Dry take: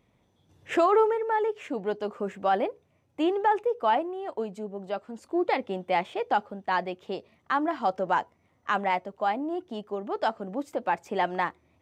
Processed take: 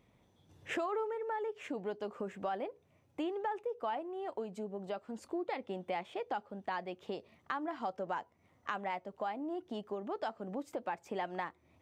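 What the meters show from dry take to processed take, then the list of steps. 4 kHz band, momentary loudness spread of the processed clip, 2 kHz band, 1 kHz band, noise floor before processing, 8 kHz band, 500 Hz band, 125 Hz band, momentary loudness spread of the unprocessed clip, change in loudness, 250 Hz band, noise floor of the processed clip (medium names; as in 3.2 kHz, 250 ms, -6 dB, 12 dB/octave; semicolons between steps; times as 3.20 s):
-10.0 dB, 6 LU, -11.0 dB, -12.5 dB, -69 dBFS, no reading, -11.0 dB, -8.0 dB, 11 LU, -11.5 dB, -9.5 dB, -70 dBFS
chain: compression 3:1, threshold -37 dBFS, peak gain reduction 14.5 dB; trim -1 dB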